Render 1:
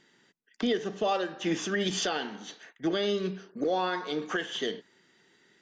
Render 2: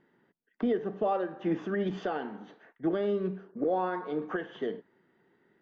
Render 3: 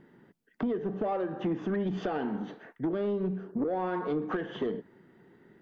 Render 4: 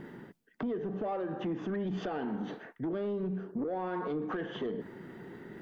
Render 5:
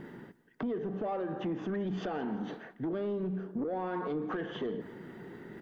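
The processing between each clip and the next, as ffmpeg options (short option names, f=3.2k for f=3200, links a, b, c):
-af "lowpass=1.2k"
-af "lowshelf=f=320:g=9.5,acompressor=threshold=-31dB:ratio=8,asoftclip=type=tanh:threshold=-28dB,volume=5.5dB"
-af "areverse,acompressor=mode=upward:threshold=-35dB:ratio=2.5,areverse,alimiter=level_in=4.5dB:limit=-24dB:level=0:latency=1:release=52,volume=-4.5dB"
-af "aecho=1:1:171|342|513|684:0.1|0.049|0.024|0.0118"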